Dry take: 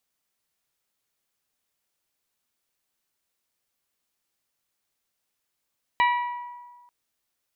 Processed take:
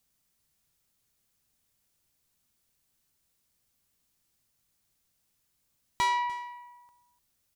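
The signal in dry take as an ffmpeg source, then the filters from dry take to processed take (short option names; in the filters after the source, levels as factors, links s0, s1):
-f lavfi -i "aevalsrc='0.141*pow(10,-3*t/1.48)*sin(2*PI*971*t)+0.0794*pow(10,-3*t/0.911)*sin(2*PI*1942*t)+0.0447*pow(10,-3*t/0.802)*sin(2*PI*2330.4*t)+0.0251*pow(10,-3*t/0.686)*sin(2*PI*2913*t)+0.0141*pow(10,-3*t/0.561)*sin(2*PI*3884*t)':d=0.89:s=44100"
-af "asoftclip=type=tanh:threshold=0.075,bass=f=250:g=13,treble=f=4000:g=5,aecho=1:1:296:0.119"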